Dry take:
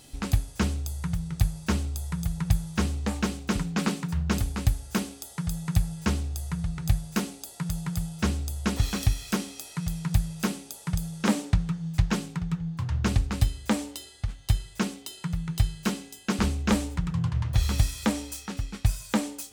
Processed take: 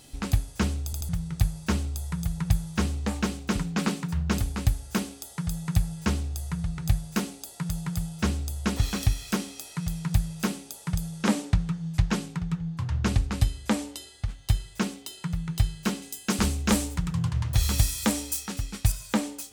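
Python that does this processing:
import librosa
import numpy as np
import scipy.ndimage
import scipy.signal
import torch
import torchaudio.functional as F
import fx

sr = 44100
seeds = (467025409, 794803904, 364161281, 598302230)

y = fx.brickwall_lowpass(x, sr, high_hz=13000.0, at=(11.0, 14.14))
y = fx.high_shelf(y, sr, hz=5800.0, db=11.0, at=(16.02, 18.92))
y = fx.edit(y, sr, fx.stutter_over(start_s=0.85, slice_s=0.08, count=3), tone=tone)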